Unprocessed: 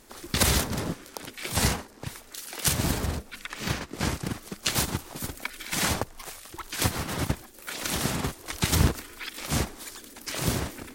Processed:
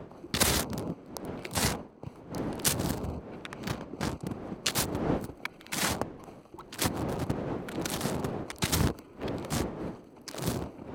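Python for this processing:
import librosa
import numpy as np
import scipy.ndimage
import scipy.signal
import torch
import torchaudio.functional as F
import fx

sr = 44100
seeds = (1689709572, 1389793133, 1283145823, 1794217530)

y = fx.wiener(x, sr, points=25)
y = fx.dmg_wind(y, sr, seeds[0], corner_hz=380.0, level_db=-36.0)
y = fx.highpass(y, sr, hz=140.0, slope=6)
y = y * librosa.db_to_amplitude(-1.5)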